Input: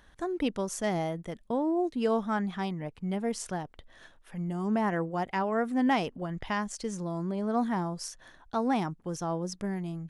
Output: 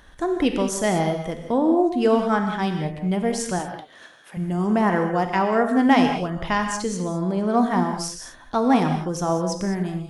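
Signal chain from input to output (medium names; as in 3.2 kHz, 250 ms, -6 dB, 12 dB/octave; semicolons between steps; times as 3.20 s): 3.59–4.37 s: high-pass 210 Hz 12 dB/octave; gated-style reverb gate 230 ms flat, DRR 4.5 dB; trim +8 dB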